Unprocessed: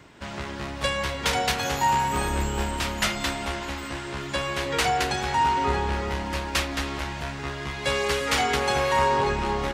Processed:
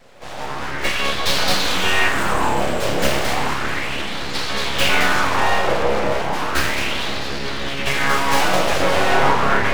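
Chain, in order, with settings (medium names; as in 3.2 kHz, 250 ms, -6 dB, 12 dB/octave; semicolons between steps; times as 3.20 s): tracing distortion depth 0.06 ms; reverberation RT60 2.8 s, pre-delay 5 ms, DRR -9 dB; full-wave rectifier; sweeping bell 0.34 Hz 540–4400 Hz +9 dB; trim -2.5 dB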